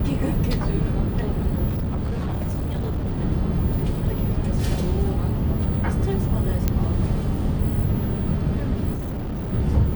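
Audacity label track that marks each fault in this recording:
1.680000	3.180000	clipped -21.5 dBFS
6.680000	6.680000	pop -7 dBFS
8.930000	9.530000	clipped -25 dBFS

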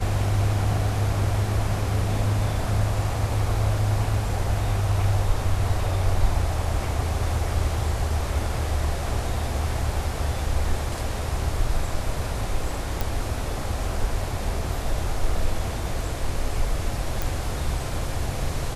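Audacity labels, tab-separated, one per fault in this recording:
13.010000	13.010000	pop
17.220000	17.220000	pop

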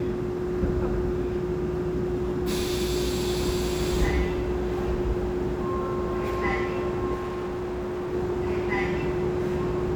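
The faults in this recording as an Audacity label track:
7.140000	8.140000	clipped -28 dBFS

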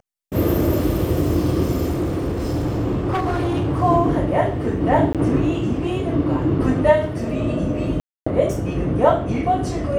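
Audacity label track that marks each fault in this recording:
1.880000	3.820000	clipped -17.5 dBFS
5.130000	5.150000	dropout 17 ms
8.000000	8.270000	dropout 265 ms

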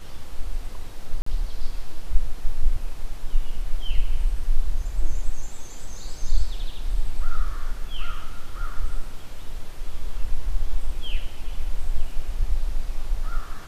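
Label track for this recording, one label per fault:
1.220000	1.260000	dropout 44 ms

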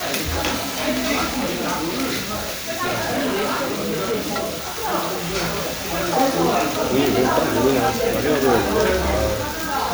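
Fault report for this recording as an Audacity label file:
1.330000	4.950000	clipped -18.5 dBFS

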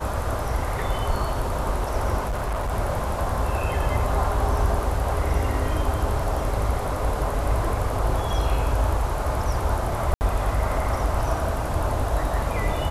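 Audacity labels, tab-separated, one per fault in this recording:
2.200000	2.730000	clipped -22.5 dBFS
10.140000	10.210000	dropout 69 ms

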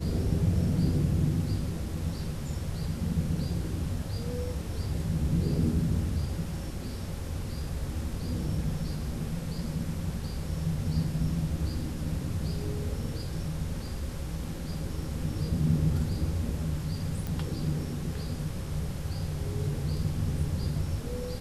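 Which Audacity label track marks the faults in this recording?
17.270000	17.270000	pop

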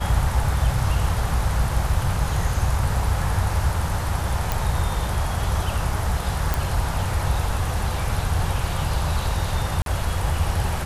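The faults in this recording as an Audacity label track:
4.520000	4.520000	pop
6.540000	6.540000	pop
9.820000	9.860000	dropout 42 ms

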